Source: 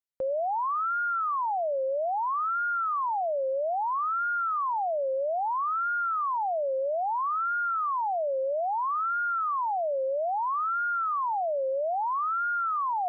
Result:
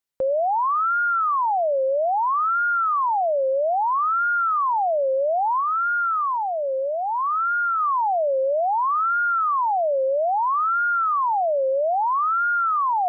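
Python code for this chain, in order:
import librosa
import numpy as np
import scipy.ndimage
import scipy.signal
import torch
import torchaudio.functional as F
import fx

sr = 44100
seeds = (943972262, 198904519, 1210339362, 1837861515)

y = fx.dynamic_eq(x, sr, hz=690.0, q=1.2, threshold_db=-43.0, ratio=4.0, max_db=-4, at=(5.6, 7.8))
y = y * 10.0 ** (7.0 / 20.0)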